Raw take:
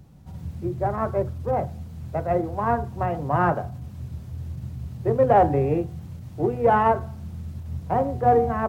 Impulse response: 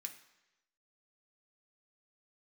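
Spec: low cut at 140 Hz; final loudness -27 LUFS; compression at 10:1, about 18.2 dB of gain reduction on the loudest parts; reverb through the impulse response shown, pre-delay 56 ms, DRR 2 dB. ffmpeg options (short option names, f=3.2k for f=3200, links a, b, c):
-filter_complex "[0:a]highpass=140,acompressor=threshold=-32dB:ratio=10,asplit=2[a][b];[1:a]atrim=start_sample=2205,adelay=56[c];[b][c]afir=irnorm=-1:irlink=0,volume=2dB[d];[a][d]amix=inputs=2:normalize=0,volume=10dB"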